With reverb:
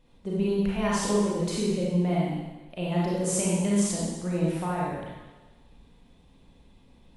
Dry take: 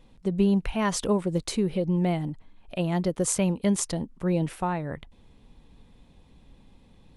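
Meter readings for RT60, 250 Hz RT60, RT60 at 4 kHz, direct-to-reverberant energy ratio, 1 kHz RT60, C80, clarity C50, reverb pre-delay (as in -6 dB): 1.2 s, 1.0 s, 1.2 s, -6.0 dB, 1.2 s, 1.5 dB, -2.5 dB, 30 ms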